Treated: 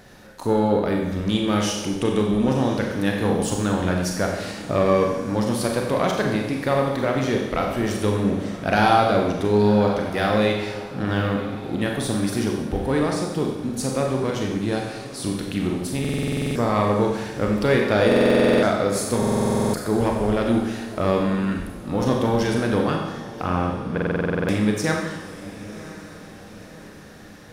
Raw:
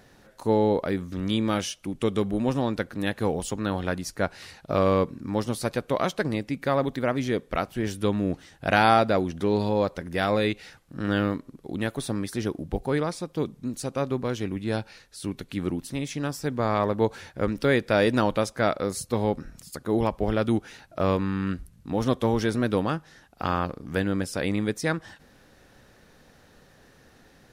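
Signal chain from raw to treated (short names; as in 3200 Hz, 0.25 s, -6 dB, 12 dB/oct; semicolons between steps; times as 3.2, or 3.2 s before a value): one diode to ground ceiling -11 dBFS; in parallel at 0 dB: compressor, threshold -32 dBFS, peak gain reduction 14.5 dB; 23.42–24.13 on the sum: air absorption 340 m; on a send: diffused feedback echo 1.051 s, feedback 49%, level -15.5 dB; on the sum: Schroeder reverb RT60 1 s, combs from 30 ms, DRR 0.5 dB; stuck buffer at 16/18.07/19.18/23.93, samples 2048, times 11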